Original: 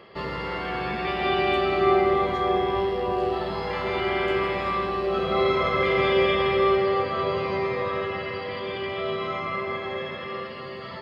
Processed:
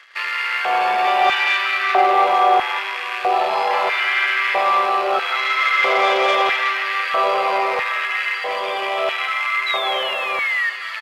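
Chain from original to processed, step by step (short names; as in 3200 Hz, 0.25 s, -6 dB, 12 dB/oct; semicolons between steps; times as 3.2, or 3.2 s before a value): rattling part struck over -37 dBFS, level -26 dBFS; painted sound fall, 9.66–10.7, 1800–4000 Hz -35 dBFS; sample leveller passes 2; LFO high-pass square 0.77 Hz 720–1700 Hz; on a send: frequency-shifting echo 0.184 s, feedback 63%, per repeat +120 Hz, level -16 dB; on the sum: downsampling 32000 Hz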